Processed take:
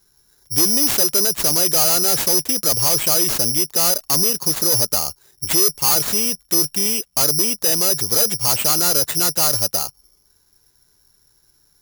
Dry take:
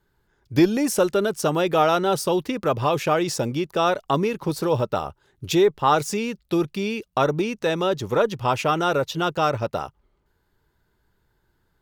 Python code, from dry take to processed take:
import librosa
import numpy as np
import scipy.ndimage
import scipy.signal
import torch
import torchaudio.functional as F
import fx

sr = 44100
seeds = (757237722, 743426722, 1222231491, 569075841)

y = 10.0 ** (-21.5 / 20.0) * np.tanh(x / 10.0 ** (-21.5 / 20.0))
y = (np.kron(y[::8], np.eye(8)[0]) * 8)[:len(y)]